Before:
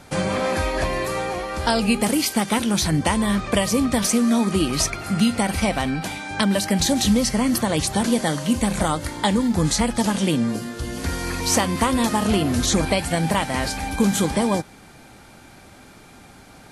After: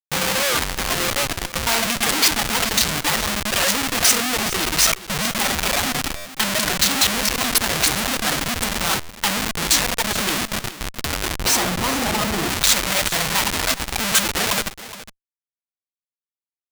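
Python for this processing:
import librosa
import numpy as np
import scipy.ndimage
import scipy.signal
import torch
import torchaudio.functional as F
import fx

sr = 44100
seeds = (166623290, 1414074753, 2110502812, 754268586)

y = fx.rev_freeverb(x, sr, rt60_s=1.0, hf_ratio=0.45, predelay_ms=20, drr_db=-0.5)
y = fx.dereverb_blind(y, sr, rt60_s=1.7)
y = fx.low_shelf(y, sr, hz=110.0, db=3.5)
y = fx.notch(y, sr, hz=620.0, q=12.0)
y = fx.dereverb_blind(y, sr, rt60_s=0.66)
y = fx.schmitt(y, sr, flips_db=-24.0)
y = fx.tilt_shelf(y, sr, db=fx.steps((0.0, -9.0), (11.38, -5.0), (12.48, -10.0)), hz=970.0)
y = y + 10.0 ** (-15.0 / 20.0) * np.pad(y, (int(418 * sr / 1000.0), 0))[:len(y)]
y = fx.buffer_glitch(y, sr, at_s=(6.16, 9.0), block=512, repeats=7)
y = fx.record_warp(y, sr, rpm=78.0, depth_cents=160.0)
y = y * 10.0 ** (2.0 / 20.0)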